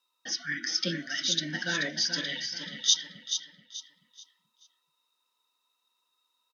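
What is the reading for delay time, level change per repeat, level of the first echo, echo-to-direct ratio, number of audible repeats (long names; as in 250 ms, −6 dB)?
432 ms, −10.0 dB, −8.0 dB, −7.5 dB, 3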